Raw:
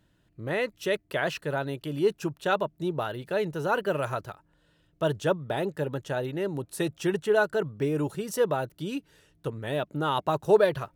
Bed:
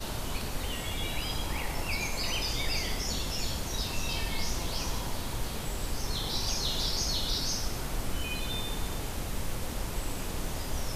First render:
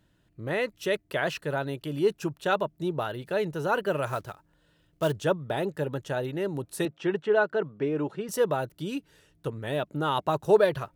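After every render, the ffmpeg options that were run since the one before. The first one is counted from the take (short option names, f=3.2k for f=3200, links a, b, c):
-filter_complex "[0:a]asettb=1/sr,asplit=3[a][b][c];[a]atrim=end=4.074[d];[b]atrim=start=4.07:end=5.12,asetpts=PTS-STARTPTS,afade=t=in:d=0.004:c=qsin,afade=t=out:st=1.046:d=0.004:c=qsin,acrusher=bits=5:mode=log:mix=0:aa=0.000001[e];[c]atrim=start=5.116[f];[d][e]acrossfade=d=0.004:c1=hsin:c2=qsin[g];[g][f]acrossfade=d=0.004:c1=qsin:c2=hsin,asettb=1/sr,asplit=3[h][i][j];[h]atrim=end=6.854[k];[i]atrim=start=6.85:end=8.29,asetpts=PTS-STARTPTS,afade=t=in:d=0.004:c=qsin,afade=t=out:st=1.436:d=0.004:c=qsin,highpass=180,lowpass=3k[l];[j]atrim=start=8.286[m];[k][l]acrossfade=d=0.004:c1=hsin:c2=qsin[n];[n][m]acrossfade=d=0.004:c1=qsin:c2=hsin"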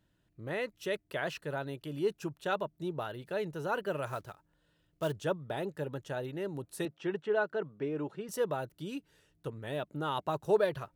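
-af "volume=-7dB"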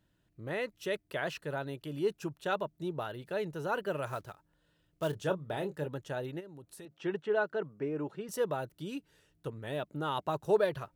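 -filter_complex "[0:a]asettb=1/sr,asplit=3[a][b][c];[a]atrim=end=5.104[d];[b]atrim=start=5.1:end=5.86,asetpts=PTS-STARTPTS,afade=t=in:d=0.004:c=qsin,afade=t=out:st=0.756:d=0.004:c=qsin,asplit=2[e][f];[f]adelay=27,volume=-9.5dB[g];[e][g]amix=inputs=2:normalize=0,atrim=end_sample=33516[h];[c]atrim=start=5.856[i];[d][h]acrossfade=d=0.004:c1=hsin:c2=qsin[j];[j][i]acrossfade=d=0.004:c1=qsin:c2=hsin,asplit=3[k][l][m];[k]afade=t=out:st=6.39:d=0.02[n];[l]acompressor=threshold=-48dB:ratio=4:attack=3.2:release=140:knee=1:detection=peak,afade=t=in:st=6.39:d=0.02,afade=t=out:st=6.9:d=0.02[o];[m]afade=t=in:st=6.9:d=0.02[p];[n][o][p]amix=inputs=3:normalize=0,asettb=1/sr,asplit=3[q][r][s];[q]atrim=end=7.664[t];[r]atrim=start=7.66:end=8.07,asetpts=PTS-STARTPTS,afade=t=in:d=0.004:c=qsin,afade=t=out:st=0.406:d=0.004:c=qsin,equalizer=f=3.5k:w=3.1:g=-11[u];[s]atrim=start=8.066[v];[t][u]acrossfade=d=0.004:c1=hsin:c2=qsin[w];[w][v]acrossfade=d=0.004:c1=qsin:c2=hsin"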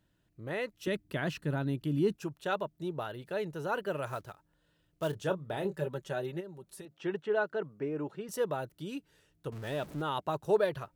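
-filter_complex "[0:a]asettb=1/sr,asplit=3[a][b][c];[a]atrim=end=0.874[d];[b]atrim=start=0.87:end=2.16,asetpts=PTS-STARTPTS,afade=t=in:d=0.004:c=qsin,afade=t=out:st=1.286:d=0.004:c=qsin,lowshelf=f=360:t=q:w=1.5:g=8.5[e];[c]atrim=start=2.156[f];[d][e]acrossfade=d=0.004:c1=hsin:c2=qsin[g];[g][f]acrossfade=d=0.004:c1=qsin:c2=hsin,asettb=1/sr,asplit=3[h][i][j];[h]atrim=end=5.644[k];[i]atrim=start=5.64:end=6.82,asetpts=PTS-STARTPTS,afade=t=in:d=0.004:c=qsin,afade=t=out:st=1.176:d=0.004:c=qsin,aecho=1:1:5.2:0.71,atrim=end_sample=52038[l];[j]atrim=start=6.816[m];[k][l]acrossfade=d=0.004:c1=hsin:c2=qsin[n];[n][m]acrossfade=d=0.004:c1=qsin:c2=hsin,asettb=1/sr,asplit=3[o][p][q];[o]atrim=end=9.524[r];[p]atrim=start=9.52:end=10.02,asetpts=PTS-STARTPTS,afade=t=in:d=0.004:c=qsin,afade=t=out:st=0.496:d=0.004:c=qsin,aeval=exprs='val(0)+0.5*0.00631*sgn(val(0))':c=same[s];[q]atrim=start=10.016[t];[r][s]acrossfade=d=0.004:c1=hsin:c2=qsin[u];[u][t]acrossfade=d=0.004:c1=qsin:c2=hsin"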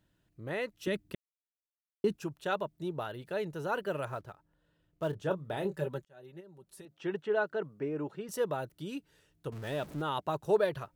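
-filter_complex "[0:a]asettb=1/sr,asplit=3[a][b][c];[a]atrim=end=4.054[d];[b]atrim=start=4.05:end=5.31,asetpts=PTS-STARTPTS,afade=t=in:d=0.004:c=qsin,afade=t=out:st=1.256:d=0.004:c=qsin,highshelf=f=2.8k:g=-9.5[e];[c]atrim=start=5.306[f];[d][e]acrossfade=d=0.004:c1=hsin:c2=qsin[g];[g][f]acrossfade=d=0.004:c1=qsin:c2=hsin,asplit=4[h][i][j][k];[h]atrim=end=1.15,asetpts=PTS-STARTPTS,afade=t=out:st=1.146:d=0.004:c=hsin[l];[i]atrim=start=1.15:end=2.04,asetpts=PTS-STARTPTS,volume=0[m];[j]atrim=start=2.04:end=6.05,asetpts=PTS-STARTPTS,afade=t=in:d=0.004:c=hsin,afade=t=out:st=4.006:d=0.004:c=hsin[n];[k]atrim=start=6.05,asetpts=PTS-STARTPTS,afade=t=in:d=1.11[o];[l][m][n][o]concat=n=4:v=0:a=1"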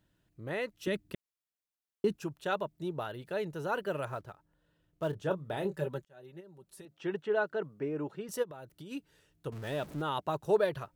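-filter_complex "[0:a]asplit=3[a][b][c];[a]afade=t=out:st=8.42:d=0.02[d];[b]acompressor=threshold=-43dB:ratio=6:attack=3.2:release=140:knee=1:detection=peak,afade=t=in:st=8.42:d=0.02,afade=t=out:st=8.9:d=0.02[e];[c]afade=t=in:st=8.9:d=0.02[f];[d][e][f]amix=inputs=3:normalize=0"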